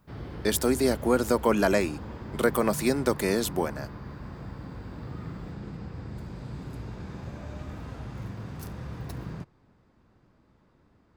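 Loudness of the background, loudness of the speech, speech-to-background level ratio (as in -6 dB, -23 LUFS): -39.5 LUFS, -26.0 LUFS, 13.5 dB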